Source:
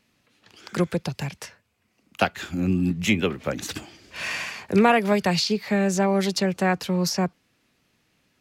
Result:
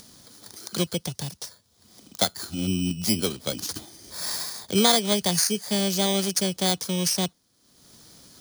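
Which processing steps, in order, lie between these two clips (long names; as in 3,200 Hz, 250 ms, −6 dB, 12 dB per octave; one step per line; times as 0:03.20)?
samples in bit-reversed order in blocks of 16 samples
upward compression, threshold −34 dBFS
flat-topped bell 5,100 Hz +11 dB
level −3.5 dB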